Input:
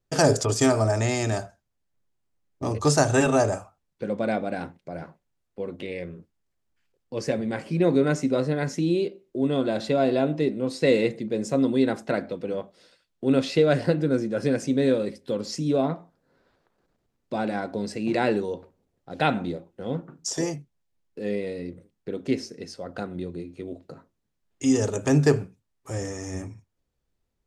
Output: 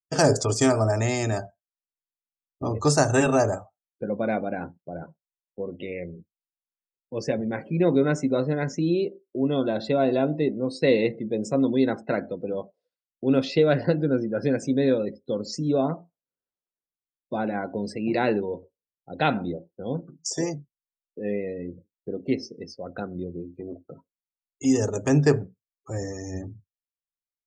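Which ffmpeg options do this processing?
ffmpeg -i in.wav -filter_complex "[0:a]asettb=1/sr,asplit=3[link_01][link_02][link_03];[link_01]atrim=end=23.604[link_04];[link_02]atrim=start=23.6:end=24.65,asetpts=PTS-STARTPTS,afade=type=in:duration=0.004:curve=qsin,afade=type=out:start_time=1.046:duration=0.004:curve=qsin,volume=28.5dB,asoftclip=hard,volume=-28.5dB[link_05];[link_03]atrim=start=24.646[link_06];[link_04][link_05]acrossfade=duration=0.004:curve1=hsin:curve2=qsin[link_07];[link_07][link_06]acrossfade=duration=0.004:curve1=qsin:curve2=hsin,afftdn=noise_reduction=35:noise_floor=-41" out.wav

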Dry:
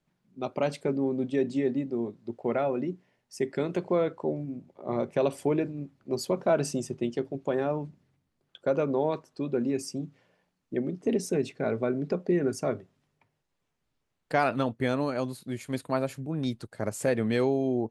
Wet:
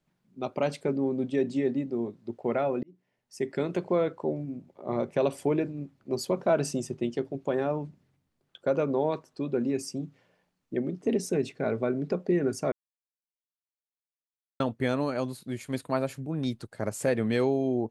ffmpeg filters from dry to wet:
ffmpeg -i in.wav -filter_complex "[0:a]asplit=4[link_01][link_02][link_03][link_04];[link_01]atrim=end=2.83,asetpts=PTS-STARTPTS,afade=type=out:start_time=2.826:duration=0.004:curve=hsin[link_05];[link_02]atrim=start=2.83:end=12.72,asetpts=PTS-STARTPTS,afade=type=in:duration=0.71,afade=type=out:start_time=9.886:duration=0.004:curve=hsin[link_06];[link_03]atrim=start=12.72:end=14.6,asetpts=PTS-STARTPTS,volume=0[link_07];[link_04]atrim=start=14.6,asetpts=PTS-STARTPTS,afade=type=in:duration=0.004:curve=hsin[link_08];[link_05][link_06][link_07][link_08]concat=n=4:v=0:a=1" out.wav

